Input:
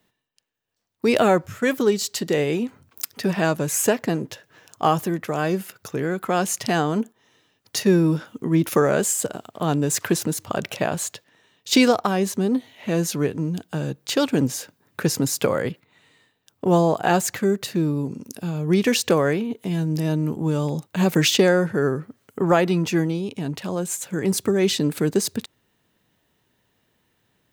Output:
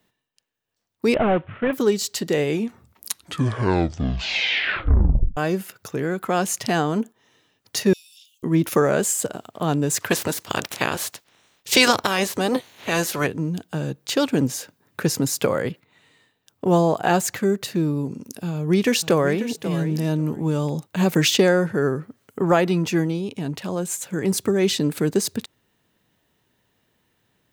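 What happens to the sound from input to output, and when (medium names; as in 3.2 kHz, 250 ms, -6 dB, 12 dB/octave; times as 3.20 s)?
1.14–1.73 s: CVSD coder 16 kbps
2.47 s: tape stop 2.90 s
7.93–8.43 s: steep high-pass 2.7 kHz 72 dB/octave
10.10–13.26 s: spectral peaks clipped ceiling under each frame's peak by 19 dB
18.48–19.50 s: echo throw 540 ms, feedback 15%, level -12.5 dB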